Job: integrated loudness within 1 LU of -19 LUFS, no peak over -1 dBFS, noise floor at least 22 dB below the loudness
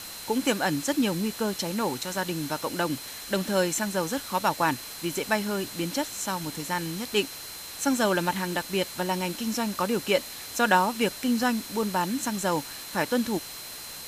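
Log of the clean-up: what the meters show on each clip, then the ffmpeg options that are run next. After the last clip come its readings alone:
steady tone 4.1 kHz; tone level -44 dBFS; noise floor -40 dBFS; noise floor target -50 dBFS; loudness -27.5 LUFS; peak level -7.5 dBFS; loudness target -19.0 LUFS
-> -af "bandreject=f=4100:w=30"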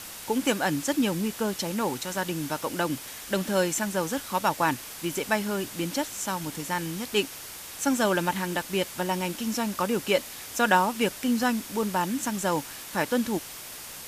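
steady tone not found; noise floor -41 dBFS; noise floor target -50 dBFS
-> -af "afftdn=nr=9:nf=-41"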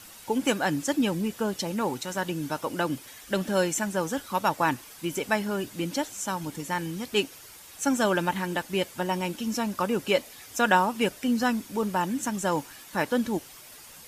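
noise floor -48 dBFS; noise floor target -50 dBFS
-> -af "afftdn=nr=6:nf=-48"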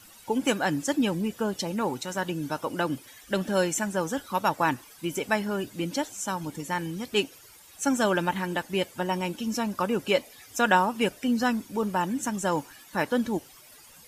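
noise floor -52 dBFS; loudness -28.0 LUFS; peak level -7.5 dBFS; loudness target -19.0 LUFS
-> -af "volume=2.82,alimiter=limit=0.891:level=0:latency=1"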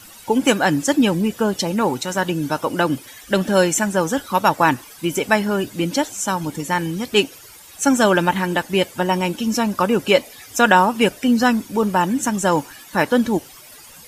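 loudness -19.0 LUFS; peak level -1.0 dBFS; noise floor -43 dBFS

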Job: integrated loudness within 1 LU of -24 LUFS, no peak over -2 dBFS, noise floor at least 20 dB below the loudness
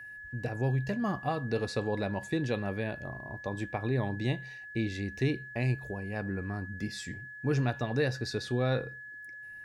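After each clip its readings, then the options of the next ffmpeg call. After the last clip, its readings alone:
steady tone 1.7 kHz; tone level -43 dBFS; loudness -33.0 LUFS; peak level -16.5 dBFS; loudness target -24.0 LUFS
-> -af "bandreject=f=1700:w=30"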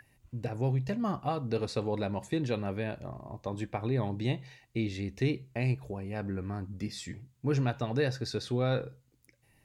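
steady tone not found; loudness -33.5 LUFS; peak level -17.0 dBFS; loudness target -24.0 LUFS
-> -af "volume=2.99"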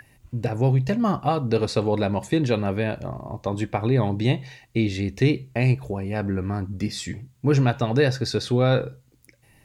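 loudness -24.0 LUFS; peak level -7.5 dBFS; noise floor -59 dBFS

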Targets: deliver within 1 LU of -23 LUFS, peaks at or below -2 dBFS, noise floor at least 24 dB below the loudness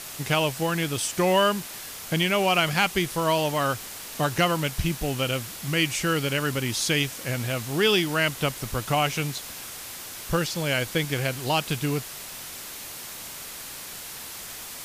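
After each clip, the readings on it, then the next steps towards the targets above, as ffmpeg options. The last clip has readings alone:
noise floor -39 dBFS; noise floor target -50 dBFS; loudness -26.0 LUFS; peak level -9.5 dBFS; loudness target -23.0 LUFS
-> -af "afftdn=nr=11:nf=-39"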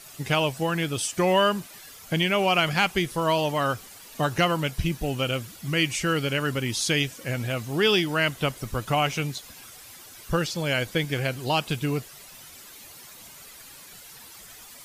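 noise floor -46 dBFS; noise floor target -49 dBFS
-> -af "afftdn=nr=6:nf=-46"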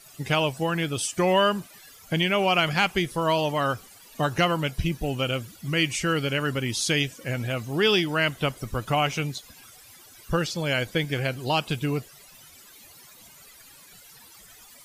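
noise floor -51 dBFS; loudness -25.5 LUFS; peak level -10.0 dBFS; loudness target -23.0 LUFS
-> -af "volume=1.33"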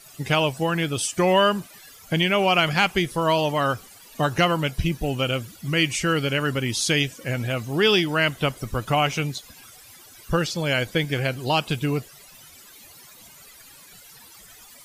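loudness -23.0 LUFS; peak level -7.5 dBFS; noise floor -48 dBFS

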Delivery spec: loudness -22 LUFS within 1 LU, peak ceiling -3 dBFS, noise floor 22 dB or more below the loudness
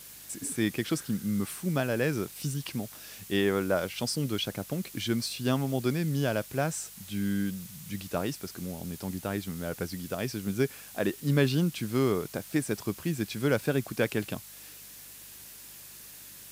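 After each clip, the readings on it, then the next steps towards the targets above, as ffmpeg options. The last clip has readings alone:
hum 50 Hz; highest harmonic 200 Hz; hum level -51 dBFS; noise floor -48 dBFS; noise floor target -53 dBFS; loudness -31.0 LUFS; peak level -12.5 dBFS; loudness target -22.0 LUFS
-> -af "bandreject=f=50:t=h:w=4,bandreject=f=100:t=h:w=4,bandreject=f=150:t=h:w=4,bandreject=f=200:t=h:w=4"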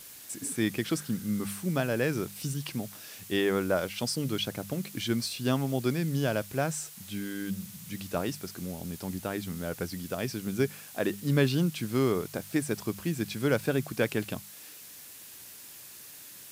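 hum not found; noise floor -48 dBFS; noise floor target -53 dBFS
-> -af "afftdn=nr=6:nf=-48"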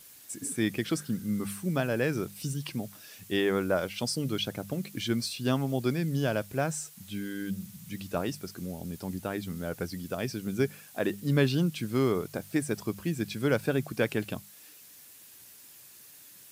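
noise floor -52 dBFS; noise floor target -54 dBFS
-> -af "afftdn=nr=6:nf=-52"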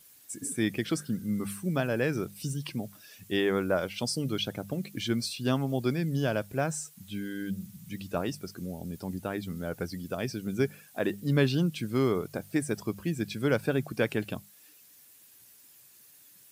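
noise floor -57 dBFS; loudness -31.5 LUFS; peak level -13.0 dBFS; loudness target -22.0 LUFS
-> -af "volume=2.99"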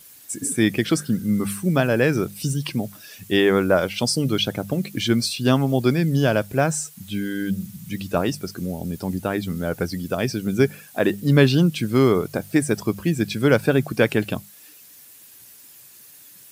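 loudness -22.0 LUFS; peak level -3.5 dBFS; noise floor -47 dBFS

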